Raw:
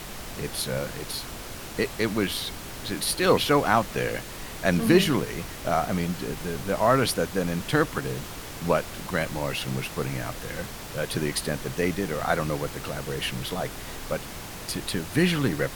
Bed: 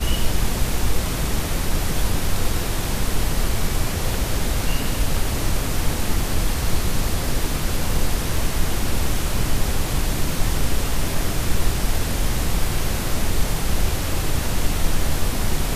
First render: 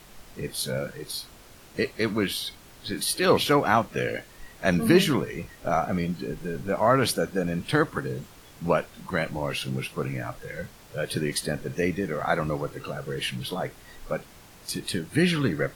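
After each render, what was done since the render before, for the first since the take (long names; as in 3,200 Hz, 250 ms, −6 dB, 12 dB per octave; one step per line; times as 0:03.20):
noise reduction from a noise print 12 dB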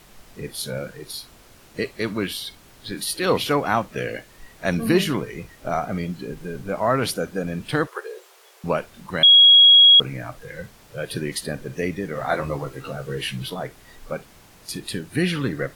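0:07.87–0:08.64: linear-phase brick-wall high-pass 350 Hz
0:09.23–0:10.00: beep over 3,310 Hz −7.5 dBFS
0:12.14–0:13.50: double-tracking delay 15 ms −3.5 dB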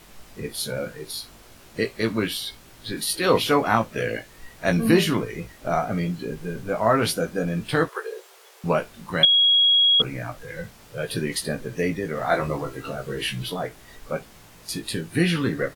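double-tracking delay 18 ms −5.5 dB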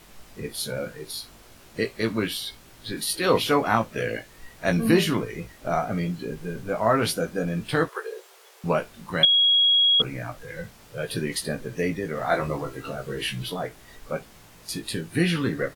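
level −1.5 dB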